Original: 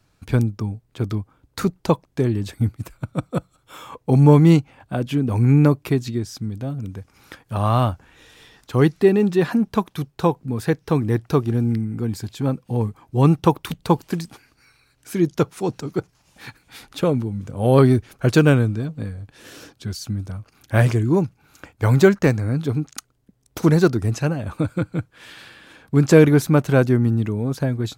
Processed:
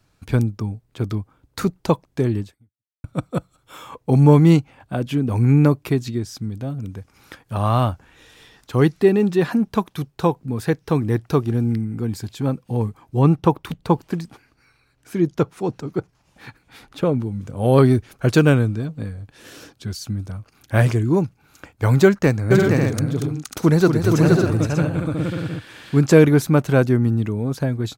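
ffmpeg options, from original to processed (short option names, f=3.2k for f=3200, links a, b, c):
-filter_complex "[0:a]asettb=1/sr,asplit=3[a][b][c];[a]atrim=end=13.194[d];[b]atrim=start=13.19:end=17.22,asetpts=PTS-STARTPTS,afade=t=in:d=0.004:c=qsin,afade=t=out:st=4.026:d=0.004:c=qsin,highshelf=f=3.1k:g=-8.5[e];[c]atrim=start=17.216[f];[d][e]acrossfade=d=0.004:c1=hsin:c2=qsin[g];[g][f]acrossfade=d=0.004:c1=qsin:c2=hsin,asplit=3[h][i][j];[h]afade=t=out:st=22.5:d=0.02[k];[i]aecho=1:1:234|471|544|592:0.473|0.668|0.501|0.422,afade=t=in:st=22.5:d=0.02,afade=t=out:st=25.99:d=0.02[l];[j]afade=t=in:st=25.99:d=0.02[m];[k][l][m]amix=inputs=3:normalize=0,asplit=2[n][o];[n]atrim=end=3.04,asetpts=PTS-STARTPTS,afade=t=out:st=2.4:d=0.64:c=exp[p];[o]atrim=start=3.04,asetpts=PTS-STARTPTS,afade=t=in:d=0.004:c=hsin[q];[p][q]concat=n=2:v=0:a=1"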